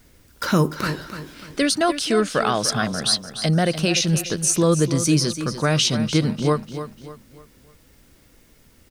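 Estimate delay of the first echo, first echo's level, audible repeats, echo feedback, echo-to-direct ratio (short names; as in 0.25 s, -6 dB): 0.296 s, -11.0 dB, 3, 38%, -10.5 dB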